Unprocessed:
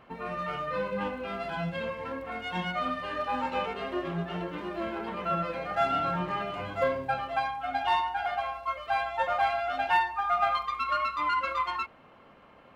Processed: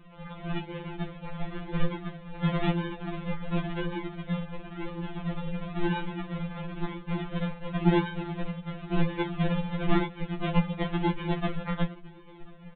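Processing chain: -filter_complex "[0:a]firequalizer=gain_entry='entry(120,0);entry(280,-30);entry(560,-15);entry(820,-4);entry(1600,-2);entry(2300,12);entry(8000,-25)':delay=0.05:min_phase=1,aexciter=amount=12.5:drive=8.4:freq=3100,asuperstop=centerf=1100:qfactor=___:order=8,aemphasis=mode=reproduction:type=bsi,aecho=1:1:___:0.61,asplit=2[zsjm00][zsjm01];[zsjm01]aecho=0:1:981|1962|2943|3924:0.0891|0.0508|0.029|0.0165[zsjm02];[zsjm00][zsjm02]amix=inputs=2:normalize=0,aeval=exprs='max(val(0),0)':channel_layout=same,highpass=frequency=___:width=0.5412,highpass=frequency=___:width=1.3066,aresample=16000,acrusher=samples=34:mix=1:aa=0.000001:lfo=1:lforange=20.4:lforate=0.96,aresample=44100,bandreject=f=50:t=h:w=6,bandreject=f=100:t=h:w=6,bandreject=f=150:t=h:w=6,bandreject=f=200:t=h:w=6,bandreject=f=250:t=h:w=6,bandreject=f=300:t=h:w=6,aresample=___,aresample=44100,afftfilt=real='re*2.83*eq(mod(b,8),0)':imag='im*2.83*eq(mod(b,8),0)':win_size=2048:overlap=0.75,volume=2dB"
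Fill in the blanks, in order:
0.88, 3.8, 230, 230, 8000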